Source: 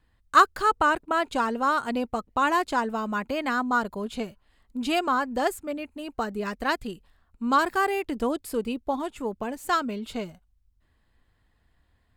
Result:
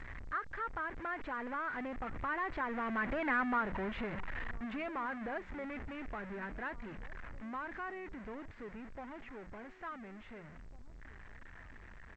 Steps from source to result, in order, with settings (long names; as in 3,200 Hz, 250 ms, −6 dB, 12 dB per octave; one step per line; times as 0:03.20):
converter with a step at zero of −22 dBFS
source passing by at 0:03.44, 19 m/s, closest 5.5 metres
low-shelf EQ 65 Hz +7 dB
mains-hum notches 60/120/180 Hz
downward compressor 2.5 to 1, threshold −42 dBFS, peak gain reduction 15.5 dB
transistor ladder low-pass 2,200 Hz, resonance 55%
slap from a distant wall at 300 metres, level −18 dB
level +10.5 dB
G.722 64 kbit/s 16,000 Hz